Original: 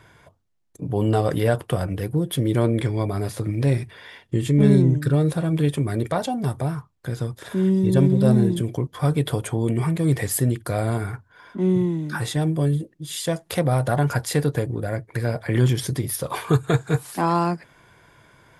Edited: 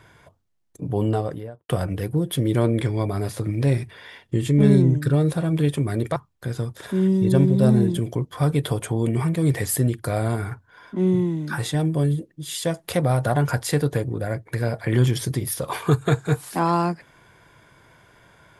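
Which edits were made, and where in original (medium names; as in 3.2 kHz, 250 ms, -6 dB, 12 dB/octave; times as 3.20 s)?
0.87–1.69 s: studio fade out
6.16–6.78 s: delete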